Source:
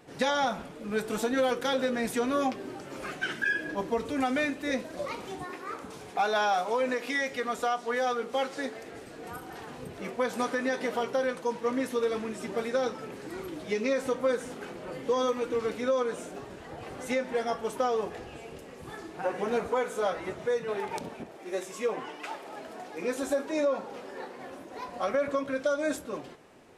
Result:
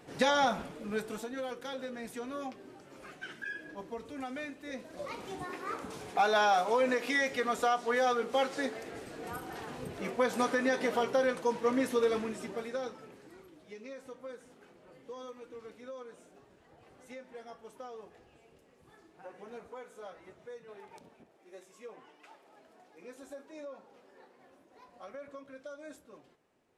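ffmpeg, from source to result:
ffmpeg -i in.wav -af "volume=12dB,afade=type=out:start_time=0.62:duration=0.64:silence=0.251189,afade=type=in:start_time=4.72:duration=0.97:silence=0.251189,afade=type=out:start_time=12.13:duration=0.44:silence=0.446684,afade=type=out:start_time=12.57:duration=0.92:silence=0.281838" out.wav

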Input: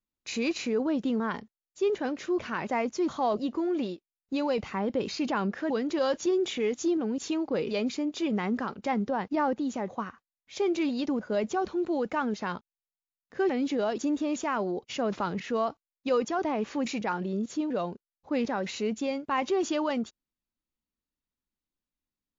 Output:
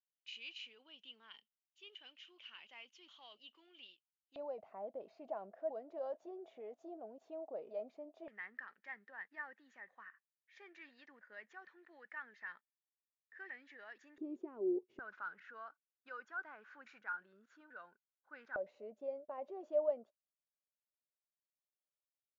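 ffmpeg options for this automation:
ffmpeg -i in.wav -af "asetnsamples=nb_out_samples=441:pad=0,asendcmd='4.36 bandpass f 660;8.28 bandpass f 1800;14.18 bandpass f 370;14.99 bandpass f 1500;18.56 bandpass f 600',bandpass=frequency=3000:width_type=q:width=13:csg=0" out.wav

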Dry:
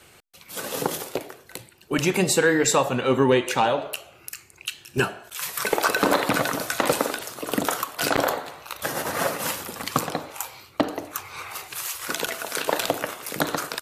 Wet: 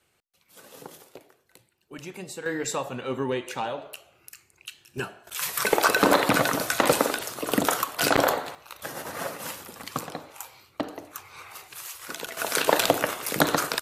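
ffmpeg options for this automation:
ffmpeg -i in.wav -af "asetnsamples=nb_out_samples=441:pad=0,asendcmd='2.46 volume volume -9.5dB;5.27 volume volume 1dB;8.55 volume volume -8dB;12.37 volume volume 3dB',volume=-17.5dB" out.wav

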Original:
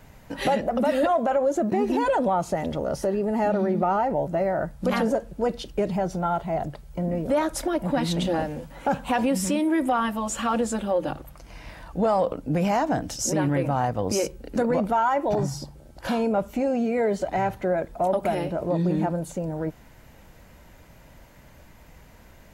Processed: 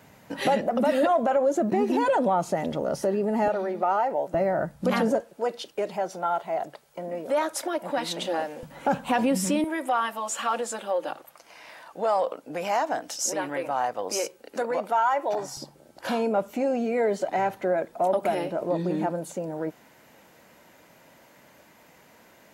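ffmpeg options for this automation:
ffmpeg -i in.wav -af "asetnsamples=nb_out_samples=441:pad=0,asendcmd='3.48 highpass f 450;4.34 highpass f 120;5.21 highpass f 450;8.63 highpass f 130;9.64 highpass f 530;15.57 highpass f 250',highpass=150" out.wav

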